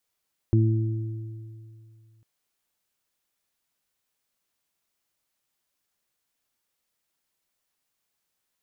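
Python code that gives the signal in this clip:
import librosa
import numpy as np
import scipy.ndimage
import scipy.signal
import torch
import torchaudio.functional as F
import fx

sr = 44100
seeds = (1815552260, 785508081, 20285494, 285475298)

y = fx.additive(sr, length_s=1.7, hz=111.0, level_db=-16, upper_db=(-9.5, -7), decay_s=2.49, upper_decays_s=(1.37, 1.96))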